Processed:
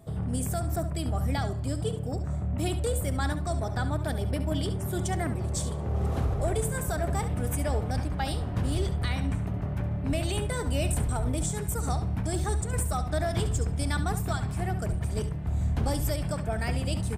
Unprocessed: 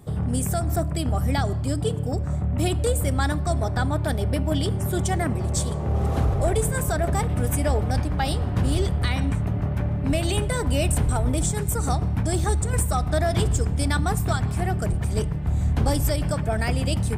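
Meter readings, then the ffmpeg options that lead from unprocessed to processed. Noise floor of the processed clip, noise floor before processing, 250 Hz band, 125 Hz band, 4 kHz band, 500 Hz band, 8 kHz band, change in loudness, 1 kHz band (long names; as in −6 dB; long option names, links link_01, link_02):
−33 dBFS, −27 dBFS, −5.5 dB, −5.5 dB, −5.5 dB, −5.5 dB, −5.5 dB, −5.5 dB, −5.5 dB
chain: -af "aeval=exprs='val(0)+0.00251*sin(2*PI*660*n/s)':channel_layout=same,aecho=1:1:70:0.266,volume=-6dB"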